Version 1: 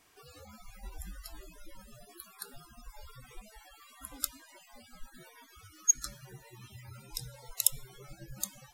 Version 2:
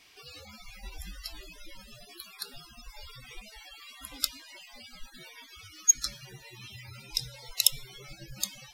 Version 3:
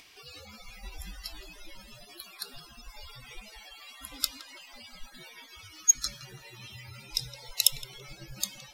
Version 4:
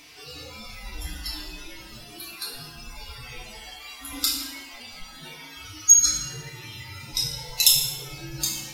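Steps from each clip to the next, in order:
flat-topped bell 3,400 Hz +10.5 dB; level +1 dB
upward compression, threshold −51 dBFS; feedback echo with a band-pass in the loop 166 ms, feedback 75%, band-pass 840 Hz, level −8 dB
feedback delay network reverb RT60 0.79 s, low-frequency decay 1.45×, high-frequency decay 0.95×, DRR −7 dB

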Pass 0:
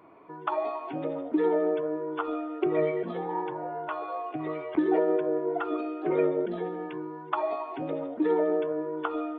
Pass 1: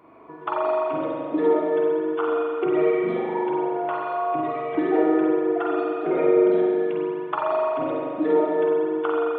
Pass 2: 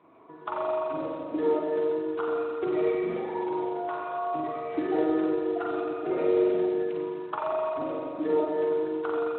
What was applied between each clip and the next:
spring reverb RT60 2.1 s, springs 41 ms, chirp 40 ms, DRR −3.5 dB; level +1 dB
level −6 dB; Speex 15 kbit/s 8,000 Hz

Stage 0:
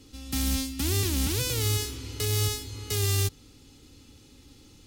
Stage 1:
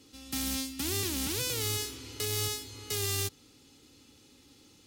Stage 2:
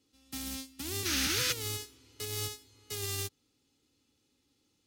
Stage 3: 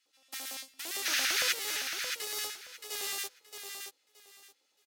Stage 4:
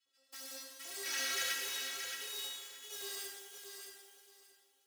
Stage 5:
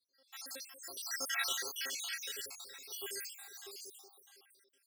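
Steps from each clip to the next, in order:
high-pass filter 240 Hz 6 dB per octave; level −2.5 dB
sound drawn into the spectrogram noise, 0:01.05–0:01.53, 1,200–6,700 Hz −32 dBFS; expander for the loud parts 2.5 to 1, over −39 dBFS
auto-filter high-pass square 8.8 Hz 620–1,700 Hz; on a send: repeating echo 623 ms, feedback 21%, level −6.5 dB
stiff-string resonator 81 Hz, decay 0.34 s, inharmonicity 0.03; reverb with rising layers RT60 1.5 s, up +12 semitones, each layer −8 dB, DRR 1 dB
time-frequency cells dropped at random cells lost 68%; level +5 dB

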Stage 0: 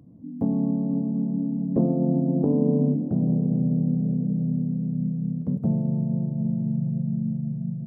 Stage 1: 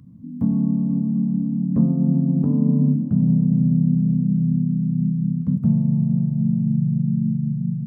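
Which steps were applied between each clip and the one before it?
flat-topped bell 510 Hz −15.5 dB
level +6 dB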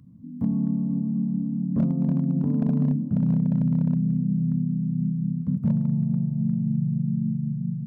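hard clipping −11 dBFS, distortion −25 dB
level −4.5 dB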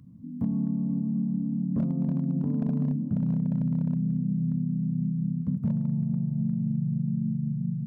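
downward compressor 2.5 to 1, threshold −25 dBFS, peak gain reduction 5 dB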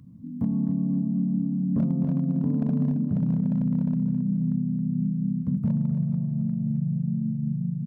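repeating echo 271 ms, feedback 36%, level −10 dB
level +2 dB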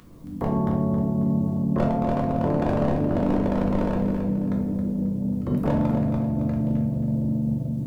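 ceiling on every frequency bin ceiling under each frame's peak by 28 dB
rectangular room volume 140 cubic metres, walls mixed, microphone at 1 metre
level −2.5 dB

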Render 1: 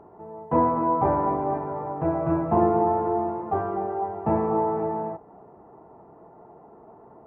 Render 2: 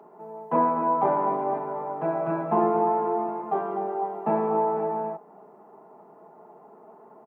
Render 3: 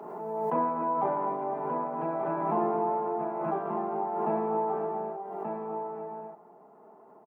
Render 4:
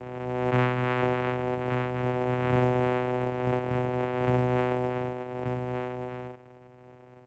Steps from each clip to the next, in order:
Butterworth high-pass 150 Hz; spectral tilt +2 dB per octave; comb filter 4.8 ms, depth 37%
on a send: single-tap delay 1,181 ms −5.5 dB; on the sum: background raised ahead of every attack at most 32 dB per second; level −6 dB
channel vocoder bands 4, saw 125 Hz; level +5 dB; mu-law 128 kbit/s 16,000 Hz

